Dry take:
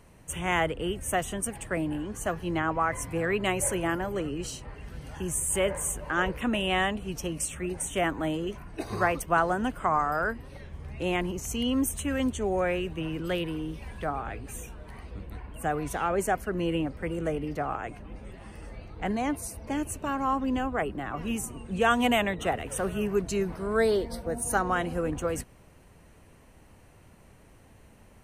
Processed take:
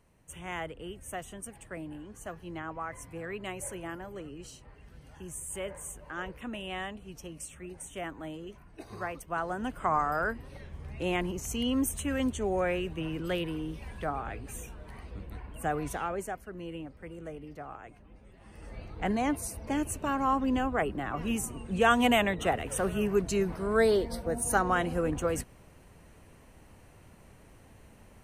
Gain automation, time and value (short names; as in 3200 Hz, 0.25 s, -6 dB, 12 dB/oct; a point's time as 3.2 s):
9.24 s -11 dB
9.9 s -2 dB
15.88 s -2 dB
16.39 s -12 dB
18.31 s -12 dB
18.79 s 0 dB